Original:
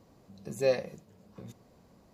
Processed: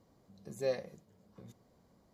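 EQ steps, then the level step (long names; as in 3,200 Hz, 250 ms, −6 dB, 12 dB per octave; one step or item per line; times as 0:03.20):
notch filter 2,600 Hz, Q 9.9
−7.0 dB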